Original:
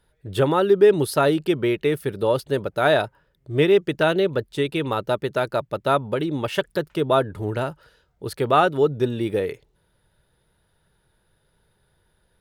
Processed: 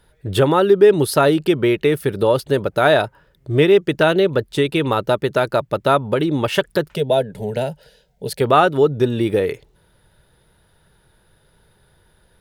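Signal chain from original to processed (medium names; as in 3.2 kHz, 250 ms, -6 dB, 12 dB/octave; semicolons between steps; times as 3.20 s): in parallel at +2.5 dB: compression, threshold -27 dBFS, peak gain reduction 16 dB; 6.95–8.41 s: on the sum: static phaser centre 320 Hz, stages 6; trim +1.5 dB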